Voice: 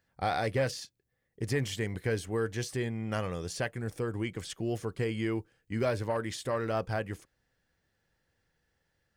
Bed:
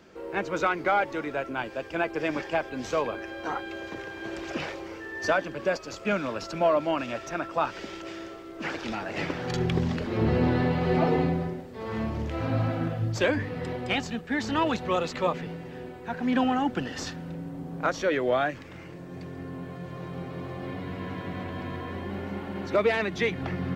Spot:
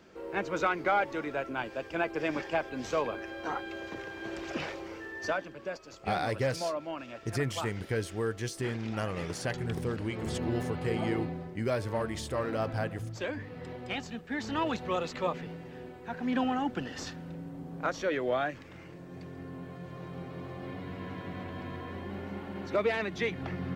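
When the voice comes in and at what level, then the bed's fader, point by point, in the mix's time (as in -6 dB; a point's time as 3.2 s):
5.85 s, -1.0 dB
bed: 5.03 s -3 dB
5.6 s -11 dB
13.25 s -11 dB
14.7 s -5 dB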